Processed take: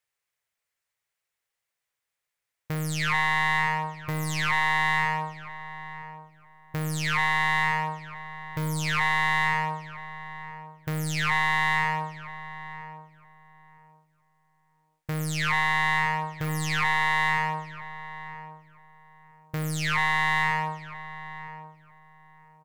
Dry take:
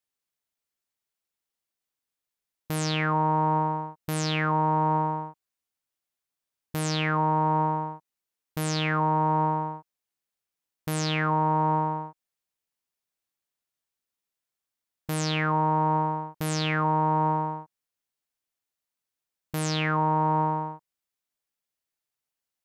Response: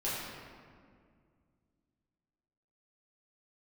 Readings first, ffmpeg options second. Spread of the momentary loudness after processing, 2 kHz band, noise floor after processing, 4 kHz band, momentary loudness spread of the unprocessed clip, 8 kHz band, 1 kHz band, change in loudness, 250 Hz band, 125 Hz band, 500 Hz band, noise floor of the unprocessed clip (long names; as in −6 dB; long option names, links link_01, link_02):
16 LU, +10.5 dB, −85 dBFS, +2.0 dB, 12 LU, 0.0 dB, −2.0 dB, +0.5 dB, −5.5 dB, −3.0 dB, −9.5 dB, below −85 dBFS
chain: -filter_complex "[0:a]acontrast=62,aeval=exprs='0.112*(abs(mod(val(0)/0.112+3,4)-2)-1)':channel_layout=same,equalizer=frequency=125:width_type=o:width=1:gain=7,equalizer=frequency=250:width_type=o:width=1:gain=-9,equalizer=frequency=500:width_type=o:width=1:gain=5,equalizer=frequency=1000:width_type=o:width=1:gain=3,equalizer=frequency=2000:width_type=o:width=1:gain=10,equalizer=frequency=8000:width_type=o:width=1:gain=3,asplit=2[link_01][link_02];[link_02]adelay=969,lowpass=frequency=1300:poles=1,volume=-12dB,asplit=2[link_03][link_04];[link_04]adelay=969,lowpass=frequency=1300:poles=1,volume=0.24,asplit=2[link_05][link_06];[link_06]adelay=969,lowpass=frequency=1300:poles=1,volume=0.24[link_07];[link_01][link_03][link_05][link_07]amix=inputs=4:normalize=0,asplit=2[link_08][link_09];[1:a]atrim=start_sample=2205,asetrate=70560,aresample=44100[link_10];[link_09][link_10]afir=irnorm=-1:irlink=0,volume=-17.5dB[link_11];[link_08][link_11]amix=inputs=2:normalize=0,volume=-7.5dB"